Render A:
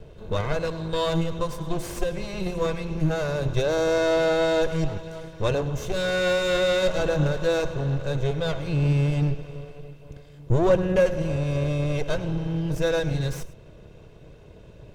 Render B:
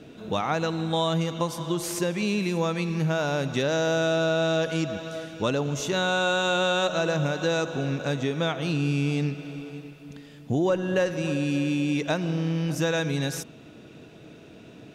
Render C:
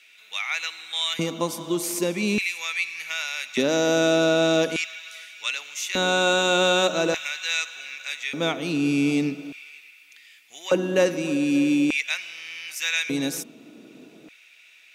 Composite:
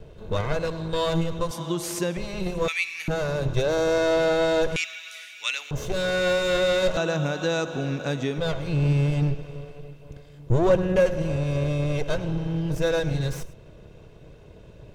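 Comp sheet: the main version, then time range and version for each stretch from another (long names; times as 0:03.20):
A
0:01.51–0:02.17: punch in from B
0:02.68–0:03.08: punch in from C
0:04.76–0:05.71: punch in from C
0:06.97–0:08.38: punch in from B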